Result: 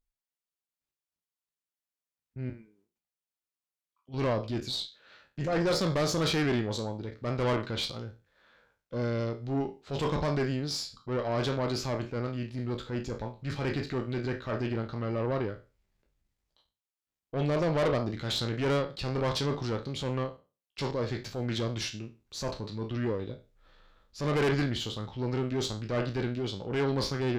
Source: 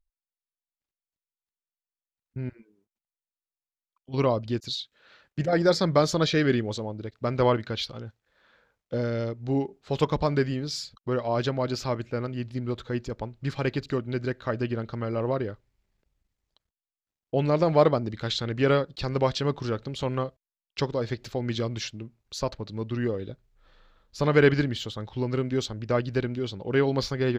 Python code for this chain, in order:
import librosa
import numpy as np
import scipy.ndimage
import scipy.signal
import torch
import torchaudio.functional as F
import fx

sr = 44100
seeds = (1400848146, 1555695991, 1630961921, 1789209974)

y = fx.spec_trails(x, sr, decay_s=0.31)
y = fx.tube_stage(y, sr, drive_db=22.0, bias=0.4)
y = fx.transient(y, sr, attack_db=-6, sustain_db=-1)